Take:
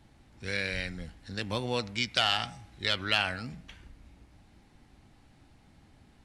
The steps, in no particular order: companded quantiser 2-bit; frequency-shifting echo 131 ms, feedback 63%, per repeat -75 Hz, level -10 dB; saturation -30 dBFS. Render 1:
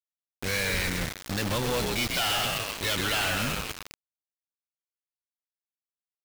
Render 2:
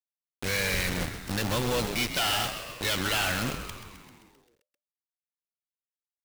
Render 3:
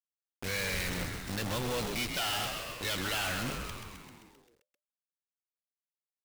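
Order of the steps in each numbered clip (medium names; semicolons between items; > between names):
frequency-shifting echo > saturation > companded quantiser; saturation > companded quantiser > frequency-shifting echo; companded quantiser > frequency-shifting echo > saturation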